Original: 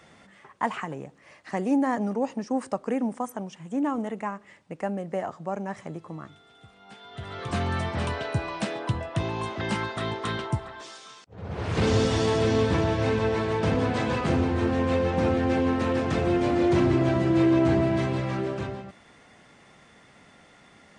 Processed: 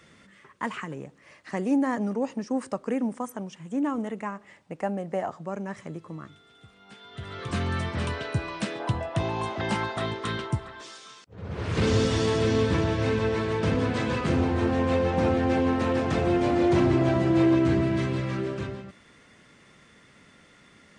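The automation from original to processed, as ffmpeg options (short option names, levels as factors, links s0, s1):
-af "asetnsamples=n=441:p=0,asendcmd='0.97 equalizer g -5;4.35 equalizer g 2;5.42 equalizer g -7.5;8.8 equalizer g 4.5;10.06 equalizer g -6;14.37 equalizer g 1.5;17.55 equalizer g -9.5',equalizer=f=760:t=o:w=0.58:g=-12"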